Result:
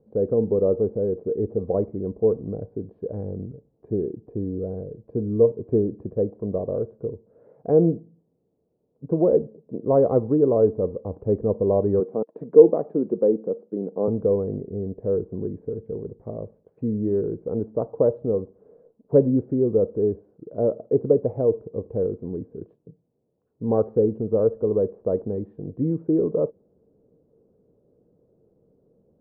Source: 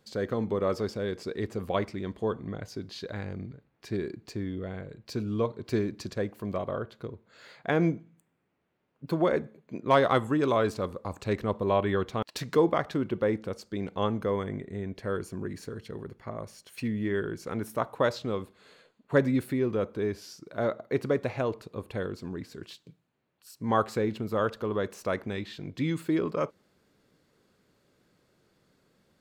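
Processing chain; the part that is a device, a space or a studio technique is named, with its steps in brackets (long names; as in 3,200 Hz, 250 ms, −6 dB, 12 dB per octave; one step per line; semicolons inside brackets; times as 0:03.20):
0:12.00–0:14.08: high-pass filter 180 Hz 24 dB per octave
under water (low-pass filter 620 Hz 24 dB per octave; parametric band 460 Hz +9 dB 0.22 octaves)
high-shelf EQ 2,200 Hz +7.5 dB
level +5 dB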